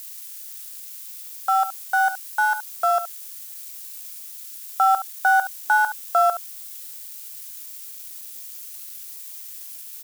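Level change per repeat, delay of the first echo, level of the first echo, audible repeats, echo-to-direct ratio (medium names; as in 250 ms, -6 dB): no regular repeats, 70 ms, -12.0 dB, 1, -12.0 dB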